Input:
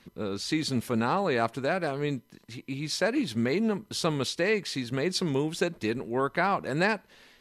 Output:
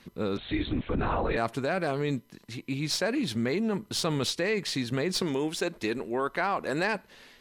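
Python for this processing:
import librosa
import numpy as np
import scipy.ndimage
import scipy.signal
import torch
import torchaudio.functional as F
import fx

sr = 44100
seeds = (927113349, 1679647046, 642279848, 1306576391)

p1 = fx.tracing_dist(x, sr, depth_ms=0.022)
p2 = fx.peak_eq(p1, sr, hz=130.0, db=-9.0, octaves=1.4, at=(5.22, 6.95))
p3 = fx.over_compress(p2, sr, threshold_db=-30.0, ratio=-0.5)
p4 = p2 + (p3 * 10.0 ** (-3.0 / 20.0))
p5 = fx.lpc_vocoder(p4, sr, seeds[0], excitation='whisper', order=10, at=(0.37, 1.37))
y = p5 * 10.0 ** (-3.5 / 20.0)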